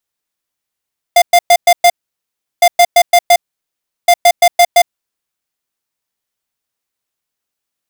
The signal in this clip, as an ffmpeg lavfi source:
ffmpeg -f lavfi -i "aevalsrc='0.501*(2*lt(mod(699*t,1),0.5)-1)*clip(min(mod(mod(t,1.46),0.17),0.06-mod(mod(t,1.46),0.17))/0.005,0,1)*lt(mod(t,1.46),0.85)':duration=4.38:sample_rate=44100" out.wav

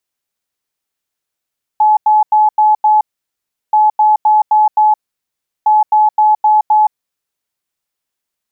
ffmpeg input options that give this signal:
ffmpeg -f lavfi -i "aevalsrc='0.501*sin(2*PI*854*t)*clip(min(mod(mod(t,1.93),0.26),0.17-mod(mod(t,1.93),0.26))/0.005,0,1)*lt(mod(t,1.93),1.3)':duration=5.79:sample_rate=44100" out.wav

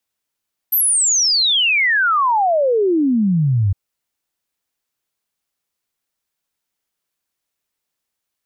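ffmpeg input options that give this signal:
ffmpeg -f lavfi -i "aevalsrc='0.237*clip(min(t,3.01-t)/0.01,0,1)*sin(2*PI*13000*3.01/log(92/13000)*(exp(log(92/13000)*t/3.01)-1))':duration=3.01:sample_rate=44100" out.wav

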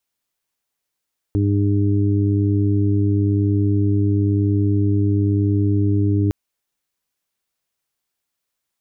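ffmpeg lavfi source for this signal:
ffmpeg -f lavfi -i "aevalsrc='0.158*sin(2*PI*101*t)+0.0447*sin(2*PI*202*t)+0.1*sin(2*PI*303*t)+0.0398*sin(2*PI*404*t)':duration=4.96:sample_rate=44100" out.wav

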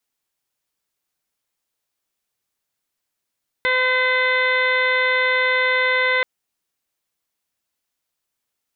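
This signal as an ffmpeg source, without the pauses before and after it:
ffmpeg -f lavfi -i "aevalsrc='0.0708*sin(2*PI*510*t)+0.0531*sin(2*PI*1020*t)+0.0708*sin(2*PI*1530*t)+0.119*sin(2*PI*2040*t)+0.02*sin(2*PI*2550*t)+0.015*sin(2*PI*3060*t)+0.0355*sin(2*PI*3570*t)+0.0112*sin(2*PI*4080*t)':duration=2.58:sample_rate=44100" out.wav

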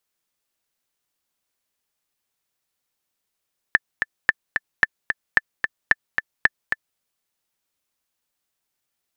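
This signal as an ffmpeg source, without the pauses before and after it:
ffmpeg -f lavfi -i "aevalsrc='pow(10,(-1-6.5*gte(mod(t,2*60/222),60/222))/20)*sin(2*PI*1760*mod(t,60/222))*exp(-6.91*mod(t,60/222)/0.03)':duration=3.24:sample_rate=44100" out.wav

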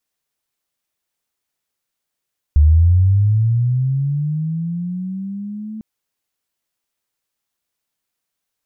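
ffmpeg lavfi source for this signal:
ffmpeg -f lavfi -i "aevalsrc='pow(10,(-6.5-20*t/3.25)/20)*sin(2*PI*(72*t+148*t*t/(2*3.25)))':duration=3.25:sample_rate=44100" out.wav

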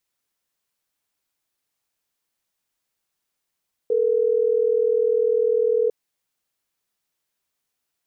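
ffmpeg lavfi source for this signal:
ffmpeg -f lavfi -i "aevalsrc='0.106*(sin(2*PI*440*t)+sin(2*PI*480*t))*clip(min(mod(t,6),2-mod(t,6))/0.005,0,1)':duration=3.12:sample_rate=44100" out.wav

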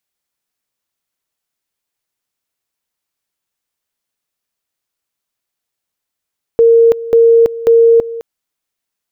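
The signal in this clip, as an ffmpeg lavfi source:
ffmpeg -f lavfi -i "aevalsrc='pow(10,(-4-16.5*gte(mod(t,0.54),0.33))/20)*sin(2*PI*461*t)':duration=1.62:sample_rate=44100" out.wav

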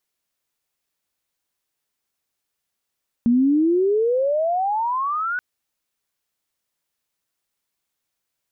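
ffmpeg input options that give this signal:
ffmpeg -f lavfi -i "aevalsrc='pow(10,(-13-8.5*t/2.13)/20)*sin(2*PI*230*2.13/log(1500/230)*(exp(log(1500/230)*t/2.13)-1))':duration=2.13:sample_rate=44100" out.wav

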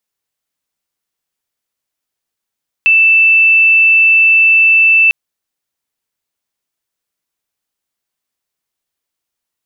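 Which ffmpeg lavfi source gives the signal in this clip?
ffmpeg -f lavfi -i "sine=frequency=2650:duration=2.25:sample_rate=44100,volume=13.06dB" out.wav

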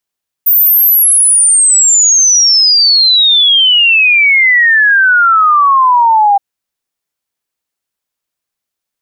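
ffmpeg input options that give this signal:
ffmpeg -f lavfi -i "aevalsrc='0.596*clip(min(t,5.92-t)/0.01,0,1)*sin(2*PI*15000*5.92/log(790/15000)*(exp(log(790/15000)*t/5.92)-1))':duration=5.92:sample_rate=44100" out.wav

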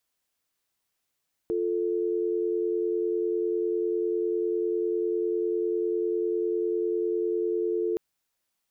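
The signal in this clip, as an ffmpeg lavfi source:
ffmpeg -f lavfi -i "aevalsrc='0.0447*(sin(2*PI*350*t)+sin(2*PI*440*t))':duration=6.47:sample_rate=44100" out.wav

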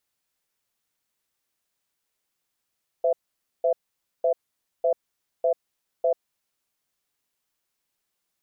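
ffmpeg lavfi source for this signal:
ffmpeg -f lavfi -i "aevalsrc='0.0891*(sin(2*PI*510*t)+sin(2*PI*666*t))*clip(min(mod(t,0.6),0.09-mod(t,0.6))/0.005,0,1)':duration=3.57:sample_rate=44100" out.wav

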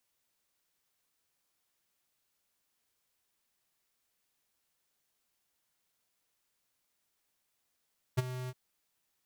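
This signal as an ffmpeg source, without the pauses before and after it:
ffmpeg -f lavfi -i "aevalsrc='0.0562*(2*lt(mod(127*t,1),0.5)-1)':duration=0.363:sample_rate=44100,afade=type=in:duration=0.017,afade=type=out:start_time=0.017:duration=0.024:silence=0.2,afade=type=out:start_time=0.32:duration=0.043" out.wav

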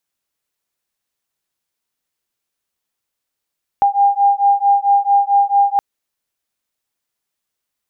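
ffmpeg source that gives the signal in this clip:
ffmpeg -f lavfi -i "aevalsrc='0.211*(sin(2*PI*801*t)+sin(2*PI*805.5*t))':duration=1.97:sample_rate=44100" out.wav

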